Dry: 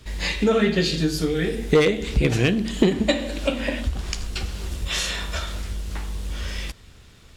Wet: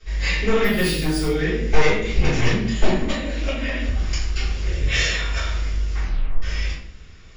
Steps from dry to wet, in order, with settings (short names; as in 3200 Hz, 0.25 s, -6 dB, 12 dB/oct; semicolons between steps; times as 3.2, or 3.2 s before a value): one-sided fold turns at -16.5 dBFS; rippled Chebyshev low-pass 7200 Hz, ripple 6 dB; 0.64–1.28 careless resampling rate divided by 3×, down none, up hold; 2.95–3.9 compressor 2:1, threshold -29 dBFS, peak gain reduction 5.5 dB; 4.63–5.1 ten-band EQ 125 Hz +9 dB, 500 Hz +10 dB, 1000 Hz -8 dB, 2000 Hz +8 dB; 6 tape stop 0.42 s; shoebox room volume 74 m³, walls mixed, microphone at 3.7 m; gain -8.5 dB